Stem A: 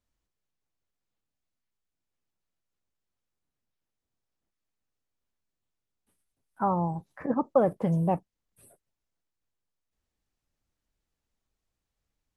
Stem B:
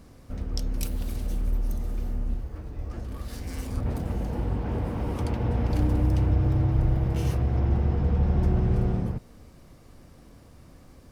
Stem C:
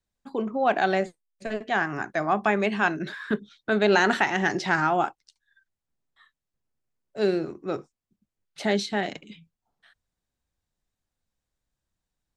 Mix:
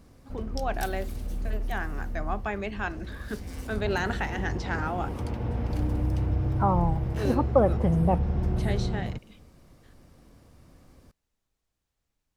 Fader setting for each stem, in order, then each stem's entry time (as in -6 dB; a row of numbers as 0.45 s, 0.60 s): +1.5 dB, -4.0 dB, -9.0 dB; 0.00 s, 0.00 s, 0.00 s